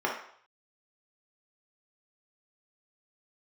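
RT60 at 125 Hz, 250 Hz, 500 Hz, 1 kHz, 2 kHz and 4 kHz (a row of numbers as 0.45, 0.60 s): 0.65, 0.45, 0.60, 0.65, 0.60, 0.55 s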